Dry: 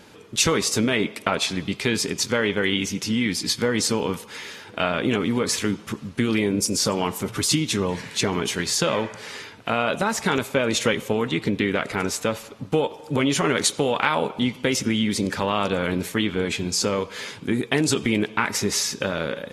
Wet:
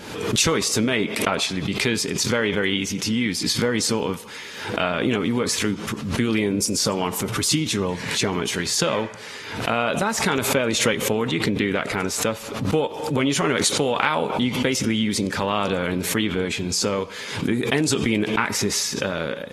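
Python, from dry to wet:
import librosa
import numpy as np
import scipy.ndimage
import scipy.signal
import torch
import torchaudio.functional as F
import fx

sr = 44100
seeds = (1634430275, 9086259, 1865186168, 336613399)

y = fx.pre_swell(x, sr, db_per_s=57.0)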